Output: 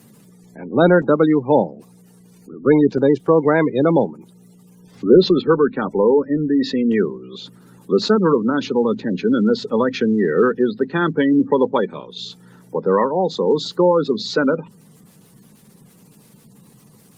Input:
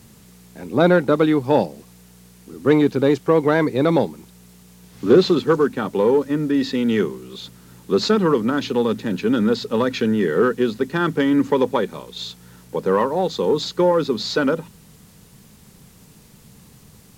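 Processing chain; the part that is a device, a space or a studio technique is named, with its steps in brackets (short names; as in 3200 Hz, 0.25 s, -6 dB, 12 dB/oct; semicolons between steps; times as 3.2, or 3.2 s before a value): noise-suppressed video call (HPF 130 Hz 24 dB/oct; spectral gate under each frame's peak -25 dB strong; gain +2 dB; Opus 32 kbps 48000 Hz)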